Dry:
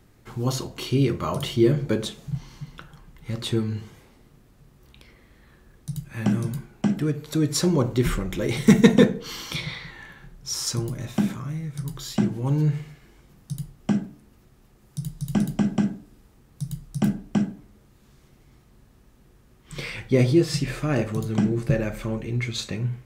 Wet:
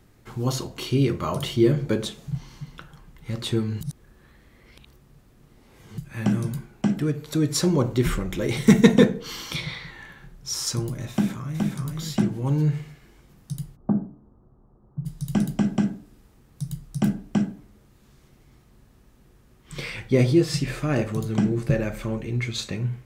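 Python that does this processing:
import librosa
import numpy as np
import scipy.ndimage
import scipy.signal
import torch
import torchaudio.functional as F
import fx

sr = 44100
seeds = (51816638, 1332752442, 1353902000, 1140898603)

y = fx.echo_throw(x, sr, start_s=11.12, length_s=0.68, ms=420, feedback_pct=10, wet_db=-3.0)
y = fx.steep_lowpass(y, sr, hz=1200.0, slope=36, at=(13.75, 15.05), fade=0.02)
y = fx.edit(y, sr, fx.reverse_span(start_s=3.81, length_s=2.17), tone=tone)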